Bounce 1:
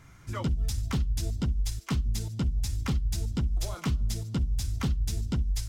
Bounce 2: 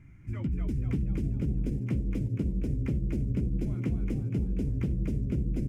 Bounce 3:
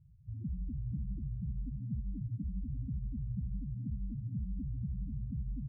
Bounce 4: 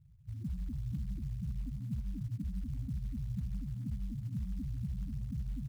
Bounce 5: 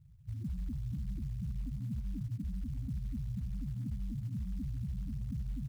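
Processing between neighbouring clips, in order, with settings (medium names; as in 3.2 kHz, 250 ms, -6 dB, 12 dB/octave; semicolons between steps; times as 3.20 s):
FFT filter 320 Hz 0 dB, 450 Hz -11 dB, 1.2 kHz -18 dB, 2.3 kHz -5 dB, 3.8 kHz -25 dB, 8.3 kHz -20 dB; compression, threshold -29 dBFS, peak gain reduction 6.5 dB; on a send: frequency-shifting echo 243 ms, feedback 53%, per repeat +73 Hz, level -4 dB; on the sum: trim +1.5 dB
elliptic low-pass 500 Hz; loudest bins only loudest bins 4; on a send at -20.5 dB: reverberation RT60 0.65 s, pre-delay 3 ms; on the sum: trim -6 dB
short-mantissa float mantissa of 4-bit
peak limiter -33.5 dBFS, peak gain reduction 5.5 dB; trim +2 dB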